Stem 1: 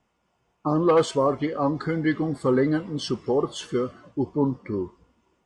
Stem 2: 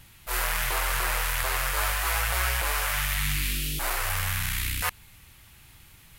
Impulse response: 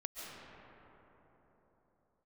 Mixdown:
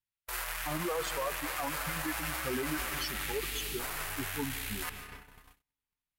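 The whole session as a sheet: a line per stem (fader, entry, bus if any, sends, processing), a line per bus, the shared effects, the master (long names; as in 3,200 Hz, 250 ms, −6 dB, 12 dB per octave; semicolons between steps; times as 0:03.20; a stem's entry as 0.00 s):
+1.0 dB, 0.00 s, send −12.5 dB, spectral dynamics exaggerated over time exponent 3; brickwall limiter −21 dBFS, peak gain reduction 8.5 dB
+1.0 dB, 0.00 s, send −10.5 dB, automatic ducking −12 dB, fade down 0.70 s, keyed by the first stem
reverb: on, pre-delay 100 ms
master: noise gate −39 dBFS, range −43 dB; low-shelf EQ 410 Hz −8 dB; brickwall limiter −24.5 dBFS, peak gain reduction 8.5 dB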